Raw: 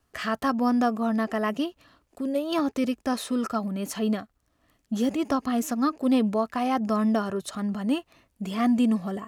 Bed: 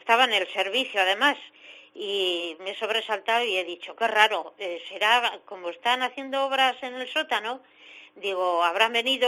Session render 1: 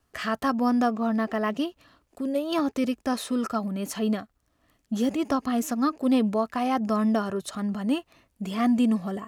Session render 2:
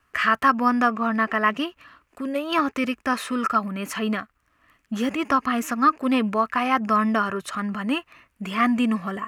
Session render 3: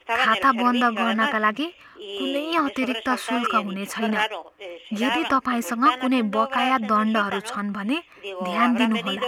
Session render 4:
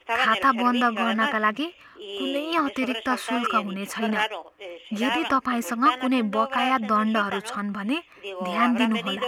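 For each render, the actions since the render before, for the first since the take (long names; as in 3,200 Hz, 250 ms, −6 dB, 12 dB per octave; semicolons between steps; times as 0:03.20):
0:00.87–0:01.57: linearly interpolated sample-rate reduction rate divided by 3×
flat-topped bell 1,700 Hz +11.5 dB
mix in bed −5 dB
level −1.5 dB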